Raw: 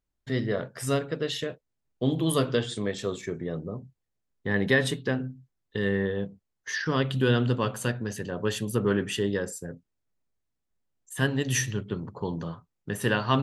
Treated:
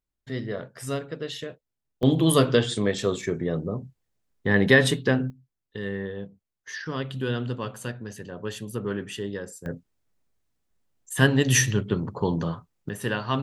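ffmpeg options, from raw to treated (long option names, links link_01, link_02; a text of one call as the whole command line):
ffmpeg -i in.wav -af "asetnsamples=nb_out_samples=441:pad=0,asendcmd='2.03 volume volume 5.5dB;5.3 volume volume -5dB;9.66 volume volume 6.5dB;12.89 volume volume -2.5dB',volume=-3.5dB" out.wav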